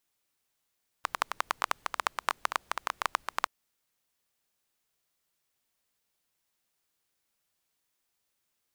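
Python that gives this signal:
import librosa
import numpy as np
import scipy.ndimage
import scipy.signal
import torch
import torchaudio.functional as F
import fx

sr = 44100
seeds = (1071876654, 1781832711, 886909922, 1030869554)

y = fx.rain(sr, seeds[0], length_s=2.43, drops_per_s=12.0, hz=1100.0, bed_db=-29)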